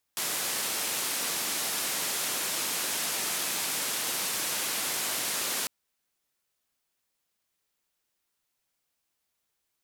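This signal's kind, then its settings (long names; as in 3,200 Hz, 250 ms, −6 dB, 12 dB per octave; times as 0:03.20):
band-limited noise 180–13,000 Hz, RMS −31 dBFS 5.50 s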